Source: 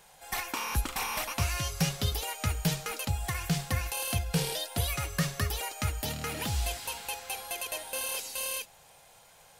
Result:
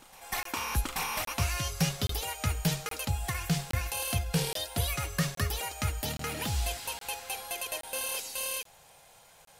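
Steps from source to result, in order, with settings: reverse echo 832 ms -22 dB; crackling interface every 0.82 s, samples 1024, zero, from 0.43 s

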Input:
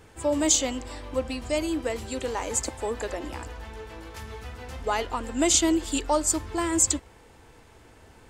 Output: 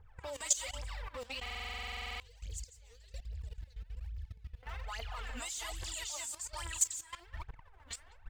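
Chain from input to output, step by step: chunks repeated in reverse 530 ms, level -3.5 dB; level-controlled noise filter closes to 1 kHz, open at -19 dBFS; phaser 1.2 Hz, delay 4.4 ms, feedback 79%; amplifier tone stack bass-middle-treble 10-0-10; compression 2.5:1, threshold -42 dBFS, peak gain reduction 19.5 dB; 2.08–4.63 s: FFT filter 110 Hz 0 dB, 180 Hz -27 dB, 450 Hz -14 dB, 1 kHz -30 dB, 4.4 kHz -8 dB; speakerphone echo 190 ms, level -16 dB; level held to a coarse grid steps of 16 dB; buffer glitch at 1.41 s, samples 2048, times 16; trim +7 dB

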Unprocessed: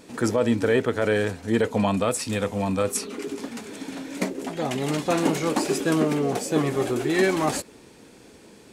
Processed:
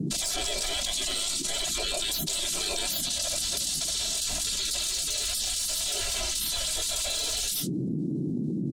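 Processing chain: in parallel at -9.5 dB: one-sided clip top -28.5 dBFS; on the sum: spectral gate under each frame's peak -25 dB weak; saturation -34.5 dBFS, distortion -10 dB; graphic EQ 125/250/500/1000/2000/4000/8000 Hz -12/-9/+10/-11/-9/+9/+7 dB; gate -43 dBFS, range -52 dB; comb 3 ms, depth 82%; band noise 130–340 Hz -66 dBFS; bass shelf 250 Hz +8.5 dB; level flattener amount 100%

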